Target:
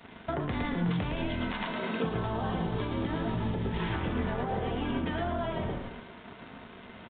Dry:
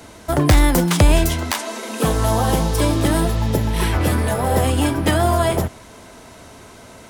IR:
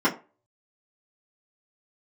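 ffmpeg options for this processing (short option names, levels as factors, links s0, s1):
-filter_complex "[0:a]highpass=100,asplit=5[s0][s1][s2][s3][s4];[s1]adelay=111,afreqshift=-44,volume=0.631[s5];[s2]adelay=222,afreqshift=-88,volume=0.209[s6];[s3]adelay=333,afreqshift=-132,volume=0.0684[s7];[s4]adelay=444,afreqshift=-176,volume=0.0226[s8];[s0][s5][s6][s7][s8]amix=inputs=5:normalize=0,alimiter=limit=0.282:level=0:latency=1:release=123,aresample=16000,aeval=exprs='sgn(val(0))*max(abs(val(0))-0.00841,0)':c=same,aresample=44100,acompressor=threshold=0.0316:ratio=6,asplit=2[s9][s10];[1:a]atrim=start_sample=2205[s11];[s10][s11]afir=irnorm=-1:irlink=0,volume=0.0944[s12];[s9][s12]amix=inputs=2:normalize=0,aresample=8000,aresample=44100"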